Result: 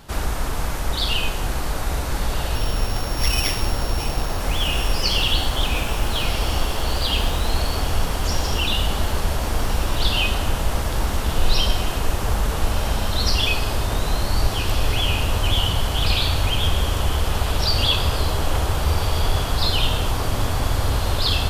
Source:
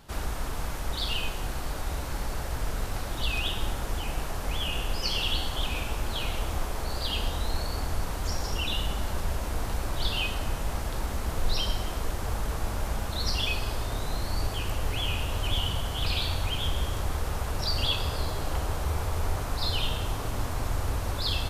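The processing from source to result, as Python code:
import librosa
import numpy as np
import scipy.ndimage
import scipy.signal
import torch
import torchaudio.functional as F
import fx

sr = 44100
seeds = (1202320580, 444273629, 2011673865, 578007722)

p1 = fx.sample_sort(x, sr, block=8, at=(2.55, 4.4))
p2 = p1 + fx.echo_diffused(p1, sr, ms=1472, feedback_pct=63, wet_db=-10.0, dry=0)
y = p2 * librosa.db_to_amplitude(8.0)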